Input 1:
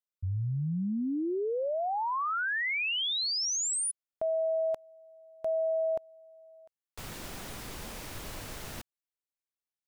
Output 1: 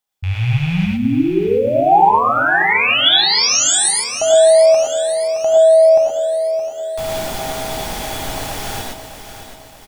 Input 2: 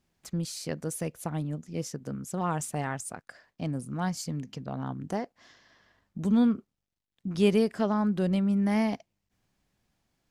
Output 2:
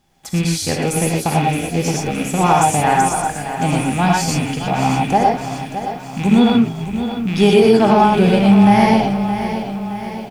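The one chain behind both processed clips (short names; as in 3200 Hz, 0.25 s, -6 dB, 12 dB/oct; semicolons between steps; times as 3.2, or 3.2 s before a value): rattling part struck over -35 dBFS, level -32 dBFS; de-hum 105.5 Hz, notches 5; small resonant body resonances 800/3400 Hz, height 14 dB, ringing for 60 ms; frequency-shifting echo 0.284 s, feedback 32%, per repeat -78 Hz, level -18.5 dB; non-linear reverb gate 0.14 s rising, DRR -1.5 dB; maximiser +13 dB; lo-fi delay 0.619 s, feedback 55%, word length 7-bit, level -10 dB; gain -1.5 dB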